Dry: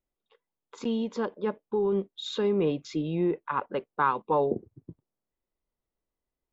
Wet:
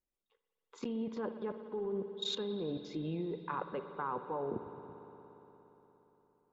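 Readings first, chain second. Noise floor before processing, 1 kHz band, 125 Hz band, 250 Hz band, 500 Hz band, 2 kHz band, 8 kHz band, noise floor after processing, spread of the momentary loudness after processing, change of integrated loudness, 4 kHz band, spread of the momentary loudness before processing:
under -85 dBFS, -11.0 dB, -9.0 dB, -9.5 dB, -10.5 dB, -12.0 dB, no reading, under -85 dBFS, 14 LU, -10.0 dB, -2.0 dB, 8 LU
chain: low-pass that closes with the level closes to 1.3 kHz, closed at -22.5 dBFS; level held to a coarse grid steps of 19 dB; spring tank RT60 4 s, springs 58 ms, chirp 35 ms, DRR 8.5 dB; trim +1 dB

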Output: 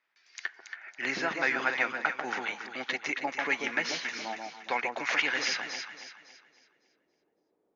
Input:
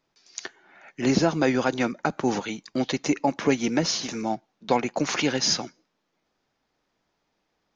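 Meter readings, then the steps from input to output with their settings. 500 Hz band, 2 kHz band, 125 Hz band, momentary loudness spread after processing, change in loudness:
-11.0 dB, +4.5 dB, -22.5 dB, 12 LU, -5.5 dB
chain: band-pass sweep 1.9 kHz -> 400 Hz, 5.80–6.45 s; echo whose repeats swap between lows and highs 139 ms, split 920 Hz, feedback 61%, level -3 dB; trim +5.5 dB

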